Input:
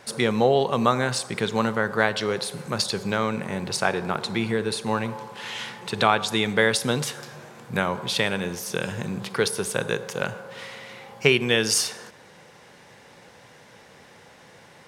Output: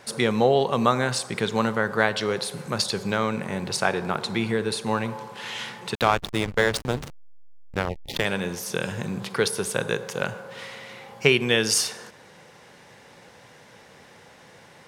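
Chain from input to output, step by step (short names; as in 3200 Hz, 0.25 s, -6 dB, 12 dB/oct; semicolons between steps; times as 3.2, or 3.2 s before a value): 5.95–8.25 backlash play -17 dBFS; 7.89–8.14 spectral gain 900–1800 Hz -29 dB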